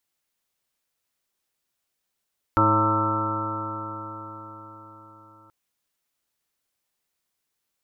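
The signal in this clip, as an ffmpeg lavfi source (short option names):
-f lavfi -i "aevalsrc='0.0668*pow(10,-3*t/4.91)*sin(2*PI*106.13*t)+0.0251*pow(10,-3*t/4.91)*sin(2*PI*213.06*t)+0.075*pow(10,-3*t/4.91)*sin(2*PI*321.56*t)+0.0133*pow(10,-3*t/4.91)*sin(2*PI*432.4*t)+0.0422*pow(10,-3*t/4.91)*sin(2*PI*546.31*t)+0.0168*pow(10,-3*t/4.91)*sin(2*PI*664*t)+0.0106*pow(10,-3*t/4.91)*sin(2*PI*786.13*t)+0.075*pow(10,-3*t/4.91)*sin(2*PI*913.32*t)+0.0316*pow(10,-3*t/4.91)*sin(2*PI*1046.14*t)+0.0398*pow(10,-3*t/4.91)*sin(2*PI*1185.12*t)+0.119*pow(10,-3*t/4.91)*sin(2*PI*1330.72*t)':d=2.93:s=44100"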